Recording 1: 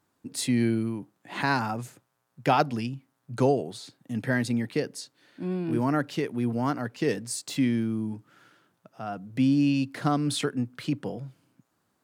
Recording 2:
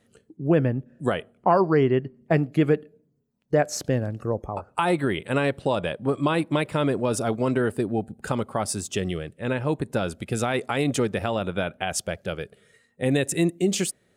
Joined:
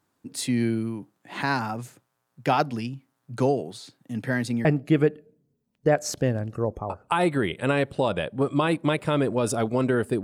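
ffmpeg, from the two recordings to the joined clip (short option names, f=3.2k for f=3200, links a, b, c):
-filter_complex "[0:a]apad=whole_dur=10.23,atrim=end=10.23,atrim=end=4.652[a];[1:a]atrim=start=2.318:end=7.9[b];[a][b]acrossfade=d=0.004:c1=hsin:c2=hsin"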